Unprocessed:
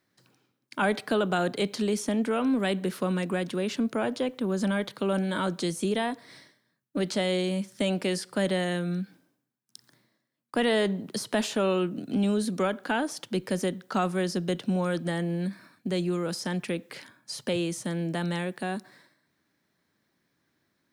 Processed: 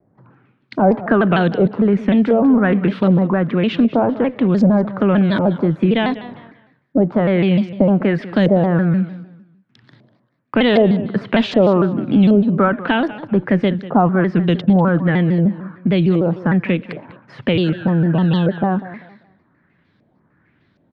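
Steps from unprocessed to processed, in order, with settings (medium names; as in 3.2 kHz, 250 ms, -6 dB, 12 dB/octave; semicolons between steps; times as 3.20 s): tone controls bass +9 dB, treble -15 dB; LFO low-pass saw up 1.3 Hz 550–4800 Hz; in parallel at -1 dB: compression, threshold -28 dBFS, peak gain reduction 12 dB; on the sum: spectral replace 17.66–18.60 s, 1.3–2.6 kHz after; on a send: feedback delay 196 ms, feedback 28%, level -16 dB; on the sum: vibrato with a chosen wave saw down 6.6 Hz, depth 160 cents; trim +5.5 dB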